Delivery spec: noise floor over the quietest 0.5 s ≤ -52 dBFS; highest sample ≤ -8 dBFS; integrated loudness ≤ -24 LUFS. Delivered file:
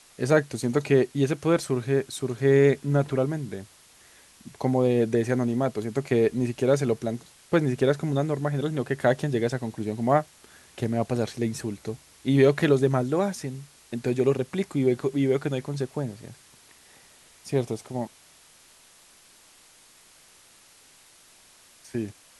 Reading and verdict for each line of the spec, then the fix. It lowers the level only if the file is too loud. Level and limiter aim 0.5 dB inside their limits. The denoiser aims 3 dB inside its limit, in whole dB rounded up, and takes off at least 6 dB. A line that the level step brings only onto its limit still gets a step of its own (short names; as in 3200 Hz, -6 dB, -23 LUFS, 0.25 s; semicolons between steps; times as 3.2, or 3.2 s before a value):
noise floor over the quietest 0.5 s -55 dBFS: OK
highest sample -7.5 dBFS: fail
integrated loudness -25.5 LUFS: OK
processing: limiter -8.5 dBFS